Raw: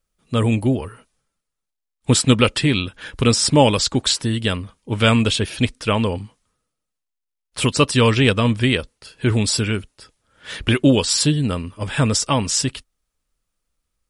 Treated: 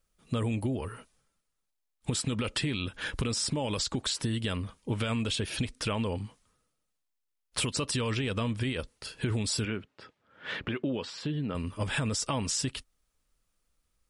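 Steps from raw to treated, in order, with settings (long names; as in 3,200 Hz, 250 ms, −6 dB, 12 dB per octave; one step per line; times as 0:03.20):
brickwall limiter −13 dBFS, peak gain reduction 11.5 dB
downward compressor, threshold −28 dBFS, peak gain reduction 11 dB
0:09.65–0:11.55: band-pass filter 140–2,600 Hz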